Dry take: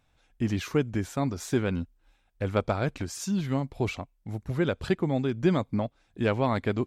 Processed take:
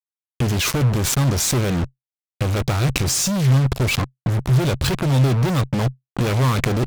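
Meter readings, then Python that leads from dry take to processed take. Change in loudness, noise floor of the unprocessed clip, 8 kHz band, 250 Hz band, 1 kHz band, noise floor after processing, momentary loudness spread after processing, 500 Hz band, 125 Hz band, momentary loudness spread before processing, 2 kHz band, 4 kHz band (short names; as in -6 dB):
+9.5 dB, -69 dBFS, +19.0 dB, +5.0 dB, +7.0 dB, under -85 dBFS, 6 LU, +3.0 dB, +13.5 dB, 9 LU, +9.0 dB, +15.5 dB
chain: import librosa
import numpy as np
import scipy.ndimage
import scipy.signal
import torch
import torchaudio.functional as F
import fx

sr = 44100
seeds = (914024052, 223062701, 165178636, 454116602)

y = fx.graphic_eq_15(x, sr, hz=(250, 630, 1600), db=(-5, -9, -7))
y = fx.fuzz(y, sr, gain_db=48.0, gate_db=-44.0)
y = fx.level_steps(y, sr, step_db=13)
y = fx.peak_eq(y, sr, hz=130.0, db=9.0, octaves=0.27)
y = F.gain(torch.from_numpy(y), 5.5).numpy()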